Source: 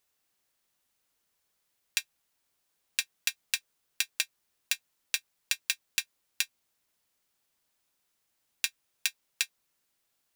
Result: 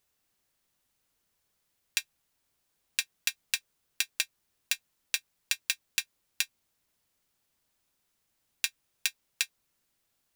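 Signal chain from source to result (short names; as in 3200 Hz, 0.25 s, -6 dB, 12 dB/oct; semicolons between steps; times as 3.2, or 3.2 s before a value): low shelf 240 Hz +7.5 dB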